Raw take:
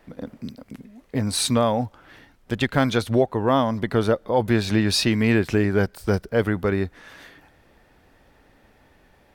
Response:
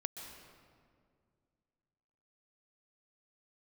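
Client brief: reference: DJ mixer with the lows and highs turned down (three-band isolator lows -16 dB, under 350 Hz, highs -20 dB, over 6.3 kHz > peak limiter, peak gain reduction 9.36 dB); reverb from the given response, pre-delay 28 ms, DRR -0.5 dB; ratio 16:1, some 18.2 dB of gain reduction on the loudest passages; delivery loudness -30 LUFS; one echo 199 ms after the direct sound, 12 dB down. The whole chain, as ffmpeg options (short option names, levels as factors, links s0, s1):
-filter_complex "[0:a]acompressor=threshold=0.0224:ratio=16,aecho=1:1:199:0.251,asplit=2[s0][s1];[1:a]atrim=start_sample=2205,adelay=28[s2];[s1][s2]afir=irnorm=-1:irlink=0,volume=1.19[s3];[s0][s3]amix=inputs=2:normalize=0,acrossover=split=350 6300:gain=0.158 1 0.1[s4][s5][s6];[s4][s5][s6]amix=inputs=3:normalize=0,volume=4.22,alimiter=limit=0.1:level=0:latency=1"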